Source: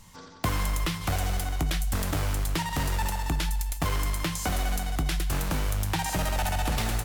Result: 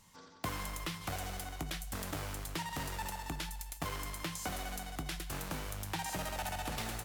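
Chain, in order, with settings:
low-shelf EQ 100 Hz −10.5 dB
level −8.5 dB

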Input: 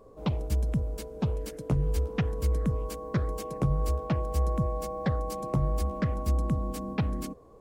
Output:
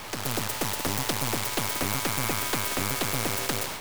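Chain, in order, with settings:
linear delta modulator 64 kbit/s, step −33 dBFS
automatic gain control gain up to 11.5 dB
wrong playback speed 7.5 ips tape played at 15 ips
half-wave rectification
every bin compressed towards the loudest bin 2 to 1
level −4.5 dB

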